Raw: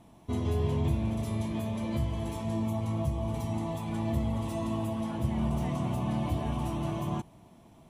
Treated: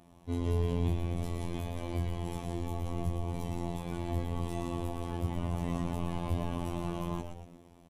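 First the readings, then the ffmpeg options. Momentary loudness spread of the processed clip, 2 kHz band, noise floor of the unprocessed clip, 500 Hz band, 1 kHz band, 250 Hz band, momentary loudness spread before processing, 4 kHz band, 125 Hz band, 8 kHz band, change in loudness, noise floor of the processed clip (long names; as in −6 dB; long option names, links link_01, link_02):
6 LU, −2.0 dB, −56 dBFS, −2.5 dB, −3.0 dB, −5.0 dB, 4 LU, −2.5 dB, −3.0 dB, −2.5 dB, −3.5 dB, −58 dBFS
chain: -filter_complex "[0:a]asplit=6[link_01][link_02][link_03][link_04][link_05][link_06];[link_02]adelay=117,afreqshift=-120,volume=-5.5dB[link_07];[link_03]adelay=234,afreqshift=-240,volume=-12.6dB[link_08];[link_04]adelay=351,afreqshift=-360,volume=-19.8dB[link_09];[link_05]adelay=468,afreqshift=-480,volume=-26.9dB[link_10];[link_06]adelay=585,afreqshift=-600,volume=-34dB[link_11];[link_01][link_07][link_08][link_09][link_10][link_11]amix=inputs=6:normalize=0,aresample=32000,aresample=44100,afftfilt=real='hypot(re,im)*cos(PI*b)':imag='0':win_size=2048:overlap=0.75"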